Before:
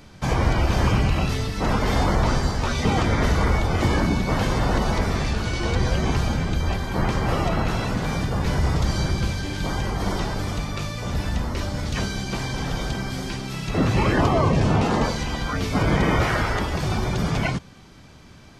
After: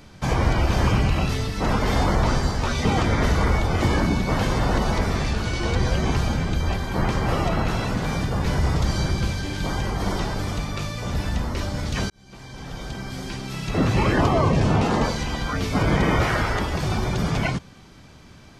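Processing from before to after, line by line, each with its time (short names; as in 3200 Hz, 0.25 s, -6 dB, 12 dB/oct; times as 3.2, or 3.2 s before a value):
12.1–13.66 fade in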